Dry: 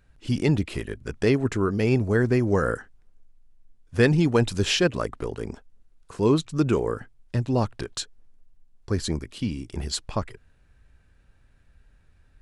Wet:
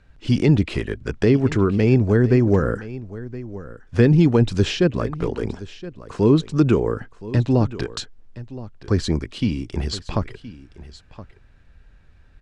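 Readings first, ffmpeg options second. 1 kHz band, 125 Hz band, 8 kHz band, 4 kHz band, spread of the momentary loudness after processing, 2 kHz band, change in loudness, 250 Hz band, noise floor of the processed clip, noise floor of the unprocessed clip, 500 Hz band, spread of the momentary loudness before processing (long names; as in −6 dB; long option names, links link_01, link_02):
+1.0 dB, +6.5 dB, −3.5 dB, −0.5 dB, 18 LU, −0.5 dB, +5.0 dB, +6.0 dB, −51 dBFS, −60 dBFS, +4.0 dB, 13 LU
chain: -filter_complex "[0:a]acrossover=split=410[link_01][link_02];[link_02]acompressor=threshold=-31dB:ratio=6[link_03];[link_01][link_03]amix=inputs=2:normalize=0,lowpass=5700,aecho=1:1:1020:0.15,volume=6.5dB"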